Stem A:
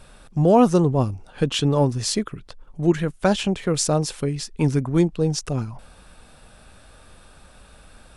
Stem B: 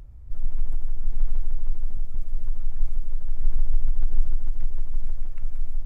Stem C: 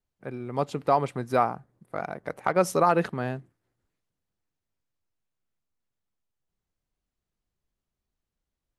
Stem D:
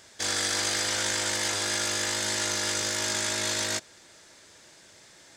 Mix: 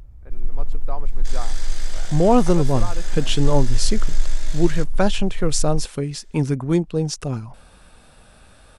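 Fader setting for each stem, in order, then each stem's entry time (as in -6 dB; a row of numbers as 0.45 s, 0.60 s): -0.5 dB, +1.5 dB, -12.0 dB, -11.5 dB; 1.75 s, 0.00 s, 0.00 s, 1.05 s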